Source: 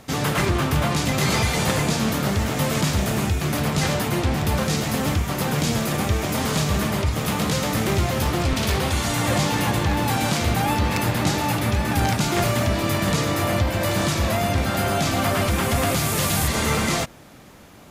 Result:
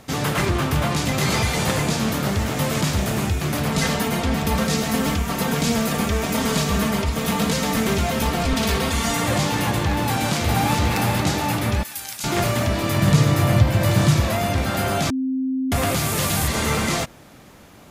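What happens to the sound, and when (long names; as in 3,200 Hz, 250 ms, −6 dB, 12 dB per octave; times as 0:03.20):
0:03.70–0:09.24: comb filter 4.4 ms
0:10.07–0:10.79: delay throw 410 ms, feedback 30%, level −4 dB
0:11.83–0:12.24: first-order pre-emphasis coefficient 0.97
0:12.96–0:14.21: parametric band 130 Hz +13 dB
0:15.10–0:15.72: beep over 262 Hz −20 dBFS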